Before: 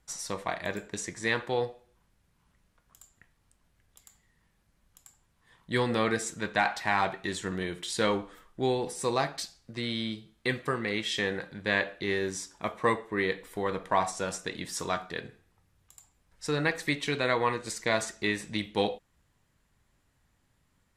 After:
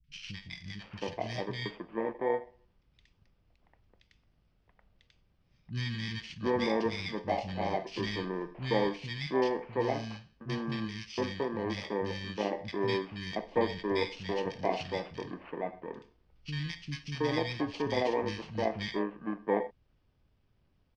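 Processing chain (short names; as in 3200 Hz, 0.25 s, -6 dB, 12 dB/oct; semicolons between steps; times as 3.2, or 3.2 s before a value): FFT order left unsorted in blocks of 32 samples; inverse Chebyshev low-pass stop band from 11000 Hz, stop band 60 dB; three bands offset in time lows, highs, mids 40/720 ms, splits 190/1800 Hz; gain +2 dB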